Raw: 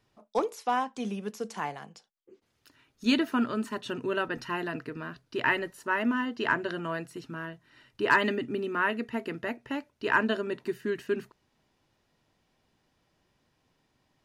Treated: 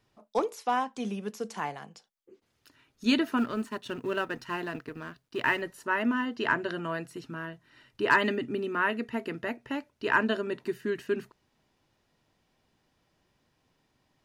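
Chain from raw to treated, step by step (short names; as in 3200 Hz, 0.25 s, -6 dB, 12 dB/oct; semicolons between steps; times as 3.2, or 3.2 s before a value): 3.37–5.62 G.711 law mismatch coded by A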